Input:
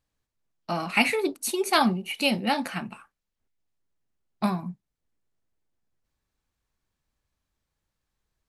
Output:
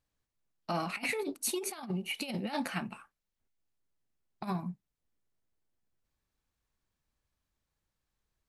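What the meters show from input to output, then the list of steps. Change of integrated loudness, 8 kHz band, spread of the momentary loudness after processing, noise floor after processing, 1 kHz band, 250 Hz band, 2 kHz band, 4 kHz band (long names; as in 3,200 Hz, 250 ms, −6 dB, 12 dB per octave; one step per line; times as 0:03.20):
−10.0 dB, −4.0 dB, 11 LU, below −85 dBFS, −11.5 dB, −9.5 dB, −11.0 dB, −11.5 dB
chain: compressor whose output falls as the input rises −27 dBFS, ratio −0.5
level −6.5 dB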